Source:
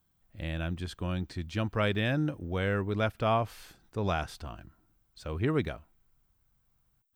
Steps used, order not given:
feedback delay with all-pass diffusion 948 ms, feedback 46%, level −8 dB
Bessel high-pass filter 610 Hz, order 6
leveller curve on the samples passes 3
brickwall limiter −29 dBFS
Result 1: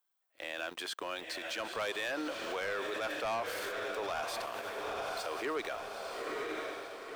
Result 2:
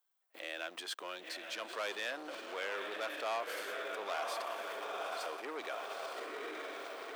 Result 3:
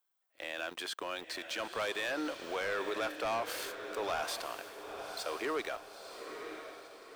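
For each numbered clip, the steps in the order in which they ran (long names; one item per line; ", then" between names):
Bessel high-pass filter, then leveller curve on the samples, then feedback delay with all-pass diffusion, then brickwall limiter
feedback delay with all-pass diffusion, then leveller curve on the samples, then brickwall limiter, then Bessel high-pass filter
Bessel high-pass filter, then leveller curve on the samples, then brickwall limiter, then feedback delay with all-pass diffusion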